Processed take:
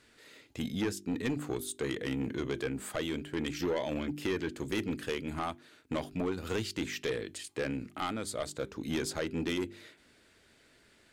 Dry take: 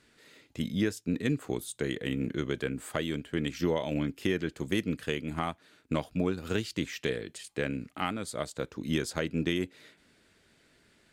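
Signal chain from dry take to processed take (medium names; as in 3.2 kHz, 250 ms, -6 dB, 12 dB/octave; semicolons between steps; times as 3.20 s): peaking EQ 170 Hz -5.5 dB 0.61 oct; de-hum 49.22 Hz, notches 8; saturation -27 dBFS, distortion -11 dB; trim +1.5 dB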